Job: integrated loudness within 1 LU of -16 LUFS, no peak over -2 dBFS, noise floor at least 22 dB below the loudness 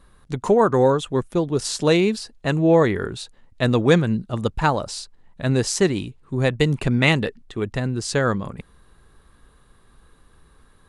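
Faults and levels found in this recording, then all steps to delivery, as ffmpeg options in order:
loudness -21.0 LUFS; peak -2.5 dBFS; loudness target -16.0 LUFS
-> -af "volume=5dB,alimiter=limit=-2dB:level=0:latency=1"

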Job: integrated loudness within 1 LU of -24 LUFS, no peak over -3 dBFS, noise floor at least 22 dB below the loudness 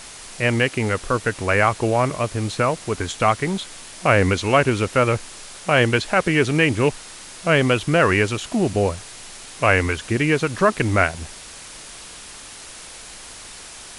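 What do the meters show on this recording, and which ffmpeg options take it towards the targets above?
noise floor -39 dBFS; noise floor target -42 dBFS; loudness -20.0 LUFS; peak -2.0 dBFS; loudness target -24.0 LUFS
-> -af "afftdn=nr=6:nf=-39"
-af "volume=-4dB"

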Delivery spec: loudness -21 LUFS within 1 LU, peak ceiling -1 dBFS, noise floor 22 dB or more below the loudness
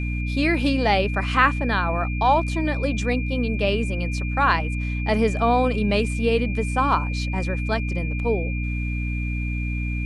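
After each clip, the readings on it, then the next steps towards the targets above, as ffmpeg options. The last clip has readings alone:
hum 60 Hz; harmonics up to 300 Hz; hum level -23 dBFS; steady tone 2400 Hz; tone level -33 dBFS; loudness -23.0 LUFS; peak -4.0 dBFS; loudness target -21.0 LUFS
-> -af "bandreject=f=60:t=h:w=6,bandreject=f=120:t=h:w=6,bandreject=f=180:t=h:w=6,bandreject=f=240:t=h:w=6,bandreject=f=300:t=h:w=6"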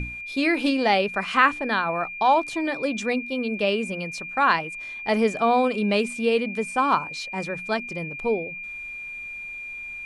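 hum none; steady tone 2400 Hz; tone level -33 dBFS
-> -af "bandreject=f=2.4k:w=30"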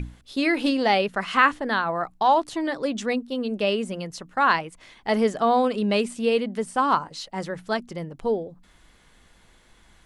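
steady tone none; loudness -24.0 LUFS; peak -4.5 dBFS; loudness target -21.0 LUFS
-> -af "volume=3dB"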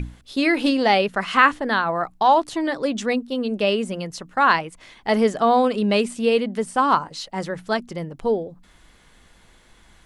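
loudness -21.0 LUFS; peak -1.5 dBFS; noise floor -54 dBFS

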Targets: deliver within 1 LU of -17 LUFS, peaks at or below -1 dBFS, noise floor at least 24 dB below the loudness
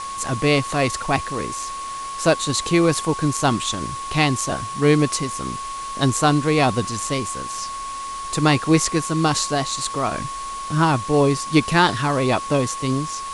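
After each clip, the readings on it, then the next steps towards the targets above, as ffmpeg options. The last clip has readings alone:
steady tone 1100 Hz; tone level -28 dBFS; noise floor -30 dBFS; noise floor target -45 dBFS; loudness -21.0 LUFS; peak -2.5 dBFS; loudness target -17.0 LUFS
-> -af "bandreject=f=1.1k:w=30"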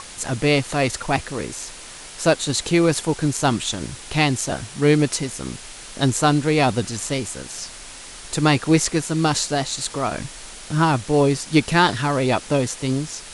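steady tone none; noise floor -39 dBFS; noise floor target -45 dBFS
-> -af "afftdn=nr=6:nf=-39"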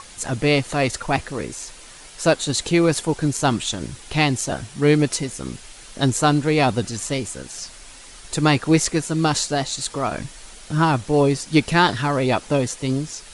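noise floor -42 dBFS; noise floor target -45 dBFS
-> -af "afftdn=nr=6:nf=-42"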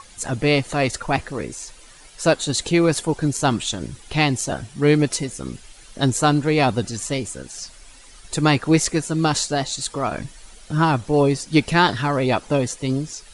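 noise floor -46 dBFS; loudness -21.0 LUFS; peak -3.5 dBFS; loudness target -17.0 LUFS
-> -af "volume=4dB,alimiter=limit=-1dB:level=0:latency=1"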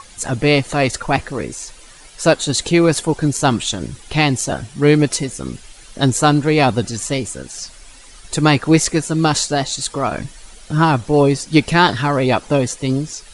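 loudness -17.0 LUFS; peak -1.0 dBFS; noise floor -42 dBFS

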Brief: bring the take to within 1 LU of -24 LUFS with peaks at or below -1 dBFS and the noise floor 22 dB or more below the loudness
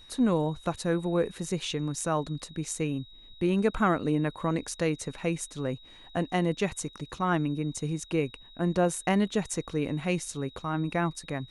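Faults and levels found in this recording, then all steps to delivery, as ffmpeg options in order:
steady tone 3800 Hz; tone level -51 dBFS; loudness -30.0 LUFS; peak -12.0 dBFS; loudness target -24.0 LUFS
-> -af "bandreject=f=3.8k:w=30"
-af "volume=6dB"

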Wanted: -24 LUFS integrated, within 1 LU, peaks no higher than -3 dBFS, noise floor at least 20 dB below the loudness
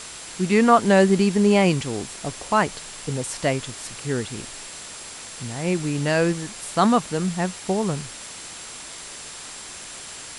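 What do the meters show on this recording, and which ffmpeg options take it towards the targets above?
steady tone 7500 Hz; tone level -44 dBFS; noise floor -38 dBFS; noise floor target -42 dBFS; loudness -22.0 LUFS; peak -3.0 dBFS; loudness target -24.0 LUFS
-> -af "bandreject=f=7.5k:w=30"
-af "afftdn=nr=6:nf=-38"
-af "volume=-2dB"

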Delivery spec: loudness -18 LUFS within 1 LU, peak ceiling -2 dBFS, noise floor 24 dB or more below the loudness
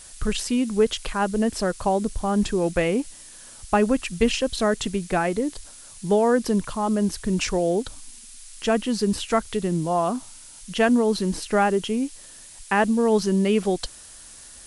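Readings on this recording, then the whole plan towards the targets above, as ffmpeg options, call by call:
noise floor -45 dBFS; noise floor target -48 dBFS; loudness -23.5 LUFS; peak -6.5 dBFS; loudness target -18.0 LUFS
-> -af "afftdn=nr=6:nf=-45"
-af "volume=5.5dB,alimiter=limit=-2dB:level=0:latency=1"

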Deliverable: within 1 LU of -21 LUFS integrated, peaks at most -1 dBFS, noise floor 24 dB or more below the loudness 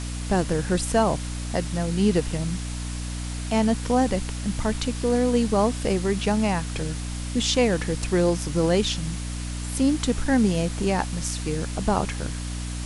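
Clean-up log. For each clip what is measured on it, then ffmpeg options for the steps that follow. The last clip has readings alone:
hum 60 Hz; harmonics up to 300 Hz; hum level -29 dBFS; noise floor -31 dBFS; noise floor target -49 dBFS; loudness -24.5 LUFS; peak -8.0 dBFS; loudness target -21.0 LUFS
-> -af "bandreject=f=60:t=h:w=6,bandreject=f=120:t=h:w=6,bandreject=f=180:t=h:w=6,bandreject=f=240:t=h:w=6,bandreject=f=300:t=h:w=6"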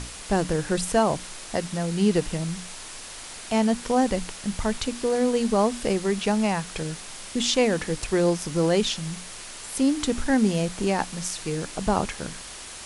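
hum none; noise floor -40 dBFS; noise floor target -49 dBFS
-> -af "afftdn=nr=9:nf=-40"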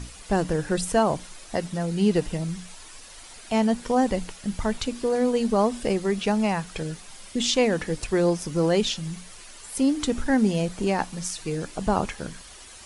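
noise floor -45 dBFS; noise floor target -50 dBFS
-> -af "afftdn=nr=6:nf=-45"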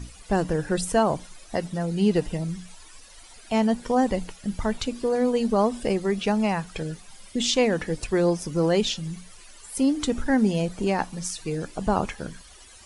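noise floor -48 dBFS; noise floor target -50 dBFS
-> -af "afftdn=nr=6:nf=-48"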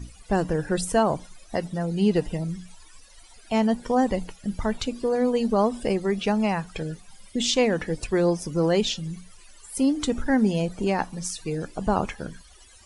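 noise floor -51 dBFS; loudness -25.5 LUFS; peak -9.0 dBFS; loudness target -21.0 LUFS
-> -af "volume=4.5dB"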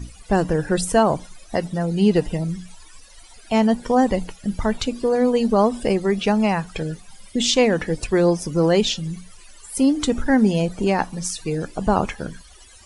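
loudness -21.0 LUFS; peak -4.5 dBFS; noise floor -46 dBFS

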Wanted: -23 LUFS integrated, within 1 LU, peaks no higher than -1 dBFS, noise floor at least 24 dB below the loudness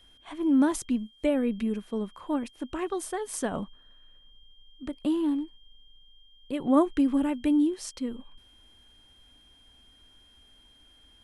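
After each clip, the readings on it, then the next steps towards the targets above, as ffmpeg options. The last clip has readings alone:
steady tone 3200 Hz; tone level -57 dBFS; loudness -28.0 LUFS; peak -11.0 dBFS; loudness target -23.0 LUFS
-> -af "bandreject=f=3.2k:w=30"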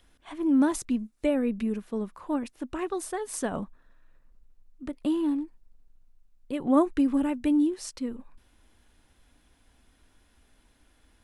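steady tone none; loudness -28.0 LUFS; peak -11.5 dBFS; loudness target -23.0 LUFS
-> -af "volume=5dB"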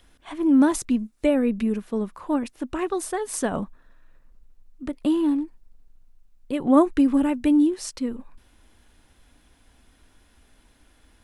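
loudness -23.0 LUFS; peak -6.5 dBFS; noise floor -60 dBFS

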